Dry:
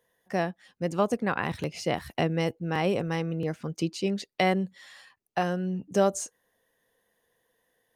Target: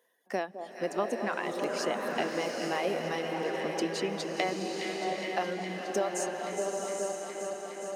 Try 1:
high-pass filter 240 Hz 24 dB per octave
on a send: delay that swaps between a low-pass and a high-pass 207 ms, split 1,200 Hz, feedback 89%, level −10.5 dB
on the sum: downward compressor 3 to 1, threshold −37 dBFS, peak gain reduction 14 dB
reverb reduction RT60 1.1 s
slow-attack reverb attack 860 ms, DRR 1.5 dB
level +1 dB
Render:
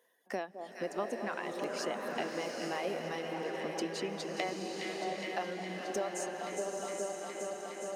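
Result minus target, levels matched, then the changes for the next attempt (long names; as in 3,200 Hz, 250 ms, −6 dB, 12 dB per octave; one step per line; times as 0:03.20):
downward compressor: peak gain reduction +5.5 dB
change: downward compressor 3 to 1, threshold −29 dBFS, peak gain reduction 9 dB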